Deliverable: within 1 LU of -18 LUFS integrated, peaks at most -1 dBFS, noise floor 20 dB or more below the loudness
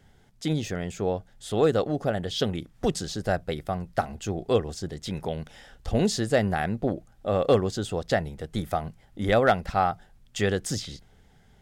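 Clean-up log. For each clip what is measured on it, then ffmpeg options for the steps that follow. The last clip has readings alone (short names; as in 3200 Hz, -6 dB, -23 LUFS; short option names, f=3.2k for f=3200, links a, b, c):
loudness -27.5 LUFS; peak -11.0 dBFS; loudness target -18.0 LUFS
-> -af "volume=9.5dB"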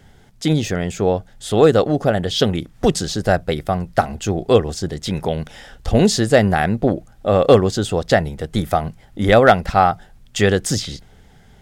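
loudness -18.0 LUFS; peak -1.5 dBFS; noise floor -49 dBFS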